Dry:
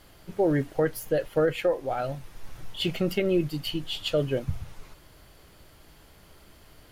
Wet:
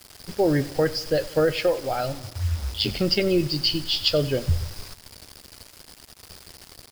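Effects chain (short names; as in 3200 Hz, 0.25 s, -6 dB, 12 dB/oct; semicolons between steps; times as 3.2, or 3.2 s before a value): 2.12–2.98 ring modulator 140 Hz -> 42 Hz; synth low-pass 5000 Hz, resonance Q 13; bell 83 Hz +12.5 dB 0.38 oct; bit-crush 7-bit; on a send: feedback echo 93 ms, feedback 59%, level -19 dB; on the sum: gain +2.5 dB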